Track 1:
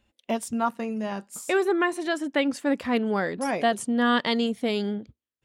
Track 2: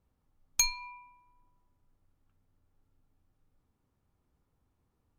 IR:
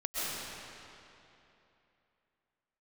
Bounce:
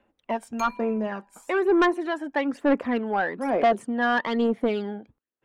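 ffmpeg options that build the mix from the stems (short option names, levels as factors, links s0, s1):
-filter_complex "[0:a]aphaser=in_gain=1:out_gain=1:delay=1.3:decay=0.54:speed=1.1:type=sinusoidal,volume=1.33[s0];[1:a]lowshelf=f=170:g=10,volume=0.891[s1];[s0][s1]amix=inputs=2:normalize=0,acrossover=split=240 2200:gain=0.158 1 0.126[s2][s3][s4];[s2][s3][s4]amix=inputs=3:normalize=0,asoftclip=type=tanh:threshold=0.2"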